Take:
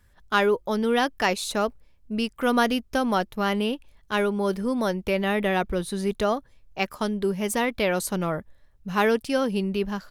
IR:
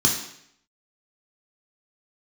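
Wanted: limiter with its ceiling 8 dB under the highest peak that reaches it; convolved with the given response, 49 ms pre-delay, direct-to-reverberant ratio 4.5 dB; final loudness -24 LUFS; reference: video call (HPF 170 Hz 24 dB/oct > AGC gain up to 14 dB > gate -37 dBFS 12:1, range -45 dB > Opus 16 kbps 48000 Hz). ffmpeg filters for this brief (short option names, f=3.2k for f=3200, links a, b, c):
-filter_complex "[0:a]alimiter=limit=-16.5dB:level=0:latency=1,asplit=2[a][b];[1:a]atrim=start_sample=2205,adelay=49[c];[b][c]afir=irnorm=-1:irlink=0,volume=-18dB[d];[a][d]amix=inputs=2:normalize=0,highpass=f=170:w=0.5412,highpass=f=170:w=1.3066,dynaudnorm=m=14dB,agate=range=-45dB:threshold=-37dB:ratio=12,volume=1dB" -ar 48000 -c:a libopus -b:a 16k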